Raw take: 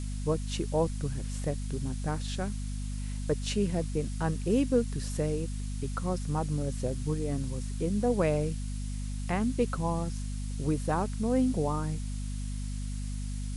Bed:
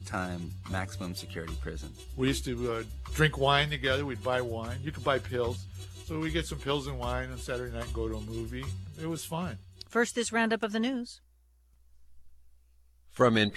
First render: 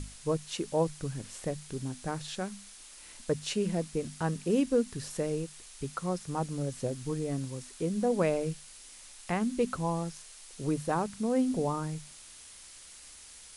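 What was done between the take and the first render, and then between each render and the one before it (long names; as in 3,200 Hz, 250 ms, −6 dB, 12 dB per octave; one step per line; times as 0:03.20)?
mains-hum notches 50/100/150/200/250 Hz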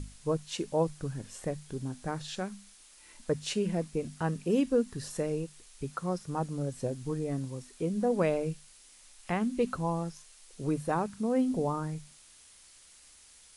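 noise reduction from a noise print 6 dB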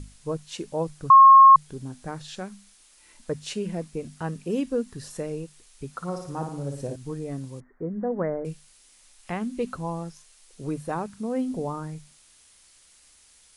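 0:01.10–0:01.56: beep over 1,080 Hz −7.5 dBFS
0:05.90–0:06.96: flutter between parallel walls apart 9.7 metres, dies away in 0.6 s
0:07.60–0:08.45: Butterworth low-pass 2,000 Hz 96 dB per octave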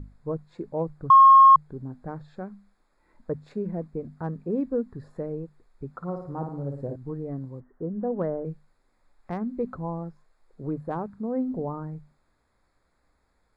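adaptive Wiener filter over 15 samples
high-shelf EQ 3,000 Hz −11.5 dB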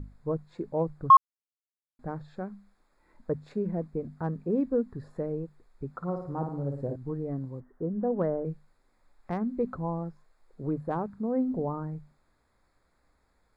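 0:01.17–0:01.99: silence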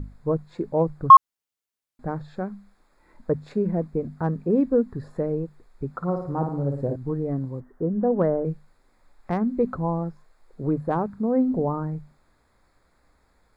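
level +6.5 dB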